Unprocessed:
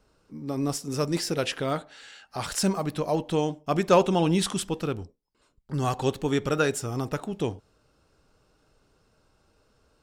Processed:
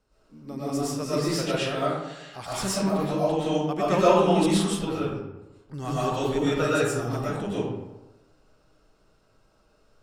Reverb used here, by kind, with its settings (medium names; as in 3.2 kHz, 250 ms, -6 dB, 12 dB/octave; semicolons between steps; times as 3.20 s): algorithmic reverb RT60 1 s, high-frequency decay 0.55×, pre-delay 80 ms, DRR -9.5 dB; trim -8 dB